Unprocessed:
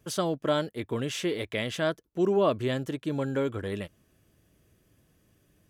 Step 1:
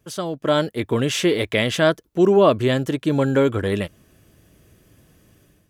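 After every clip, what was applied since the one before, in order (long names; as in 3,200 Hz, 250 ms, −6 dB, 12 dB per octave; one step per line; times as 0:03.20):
automatic gain control gain up to 11 dB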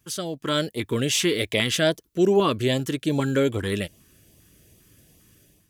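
high-shelf EQ 2,900 Hz +8.5 dB
auto-filter notch saw up 2.5 Hz 500–1,700 Hz
level −3.5 dB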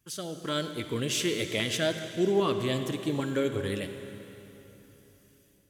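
convolution reverb RT60 3.3 s, pre-delay 43 ms, DRR 7.5 dB
level −7 dB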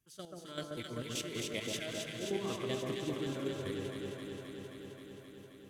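square-wave tremolo 5.2 Hz, depth 65%, duty 30%
delay that swaps between a low-pass and a high-pass 132 ms, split 1,400 Hz, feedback 88%, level −2 dB
level −8.5 dB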